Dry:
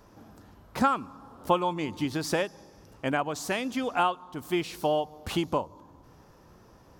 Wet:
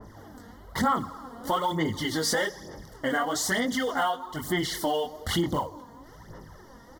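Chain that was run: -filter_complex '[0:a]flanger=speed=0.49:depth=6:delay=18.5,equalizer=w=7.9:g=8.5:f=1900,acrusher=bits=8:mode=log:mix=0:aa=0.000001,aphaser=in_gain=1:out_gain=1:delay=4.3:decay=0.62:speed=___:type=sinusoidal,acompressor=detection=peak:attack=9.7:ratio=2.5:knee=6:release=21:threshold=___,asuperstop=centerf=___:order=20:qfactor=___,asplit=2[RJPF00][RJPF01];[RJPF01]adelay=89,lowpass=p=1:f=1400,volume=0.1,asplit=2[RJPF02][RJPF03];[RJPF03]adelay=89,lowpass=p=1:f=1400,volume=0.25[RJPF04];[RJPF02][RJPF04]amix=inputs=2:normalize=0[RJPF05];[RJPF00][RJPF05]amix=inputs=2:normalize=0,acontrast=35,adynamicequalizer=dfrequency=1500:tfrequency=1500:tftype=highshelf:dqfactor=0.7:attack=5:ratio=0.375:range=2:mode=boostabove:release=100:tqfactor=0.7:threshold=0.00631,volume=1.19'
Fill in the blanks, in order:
1.1, 0.0141, 2500, 3.7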